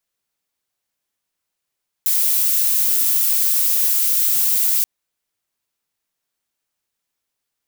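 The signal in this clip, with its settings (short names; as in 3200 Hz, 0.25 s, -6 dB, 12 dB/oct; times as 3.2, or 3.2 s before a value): noise violet, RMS -17 dBFS 2.78 s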